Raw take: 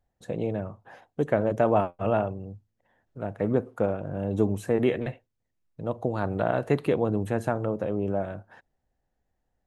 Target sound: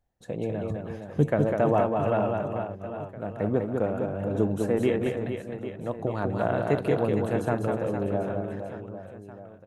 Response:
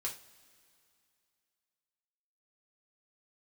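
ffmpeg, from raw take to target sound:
-filter_complex "[0:a]asettb=1/sr,asplit=3[a][b][c];[a]atrim=end=0.704[d];[b]atrim=start=0.7:end=1.3,asetpts=PTS-STARTPTS,afade=t=in:d=0.004:c=qsin,afade=t=out:st=0.596:d=0.004:c=qsin,bass=f=250:g=13,treble=f=4k:g=7[e];[c]atrim=start=1.296[f];[d][e]acrossfade=d=0.004:c1=hsin:c2=qsin[g];[g][f]acrossfade=d=0.004:c1=qsin:c2=hsin,asplit=2[h][i];[i]aecho=0:1:200|460|798|1237|1809:0.631|0.398|0.251|0.158|0.1[j];[h][j]amix=inputs=2:normalize=0,volume=-1.5dB"

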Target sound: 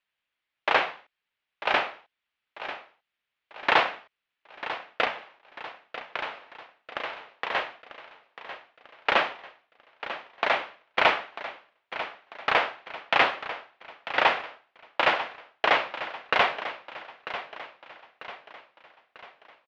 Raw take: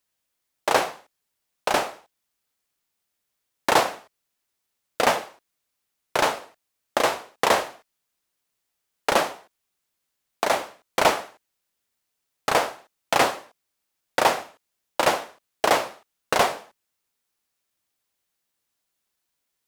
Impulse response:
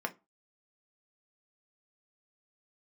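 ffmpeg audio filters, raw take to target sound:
-filter_complex "[0:a]asettb=1/sr,asplit=3[a][b][c];[a]atrim=end=5.064[d];[b]atrim=start=5.06:end=7.55,asetpts=PTS-STARTPTS,afade=t=in:d=0.004:c=qsin,afade=t=out:st=2.486:d=0.004:c=qsin,acompressor=threshold=-33dB:ratio=2.5[e];[c]atrim=start=7.546[f];[d][e]acrossfade=d=0.004:c1=hsin:c2=qsin[g];[g][f]acrossfade=d=0.004:c1=qsin:c2=hsin,lowpass=f=2.9k:w=0.5412,lowpass=f=2.9k:w=1.3066,tiltshelf=f=1.3k:g=-8.5,aecho=1:1:944|1888|2832|3776|4720:0.237|0.109|0.0502|0.0231|0.0106"

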